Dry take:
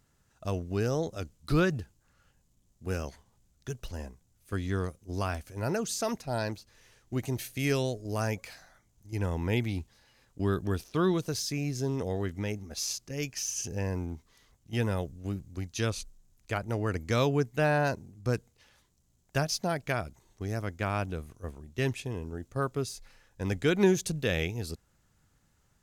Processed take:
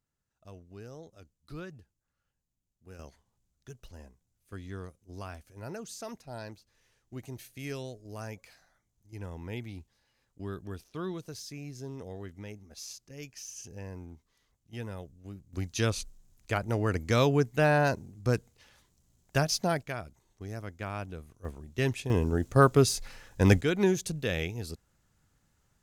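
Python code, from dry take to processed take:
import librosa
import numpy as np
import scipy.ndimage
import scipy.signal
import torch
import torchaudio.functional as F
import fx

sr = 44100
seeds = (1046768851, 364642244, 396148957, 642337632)

y = fx.gain(x, sr, db=fx.steps((0.0, -17.0), (2.99, -10.0), (15.53, 2.0), (19.83, -6.0), (21.45, 1.0), (22.1, 10.5), (23.61, -2.0)))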